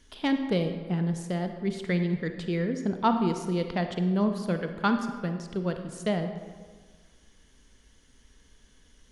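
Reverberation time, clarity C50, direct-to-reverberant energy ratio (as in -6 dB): 1.6 s, 7.5 dB, 6.5 dB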